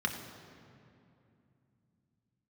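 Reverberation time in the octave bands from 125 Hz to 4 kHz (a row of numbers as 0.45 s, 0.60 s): 4.2 s, 4.1 s, 2.8 s, 2.5 s, 2.2 s, 1.7 s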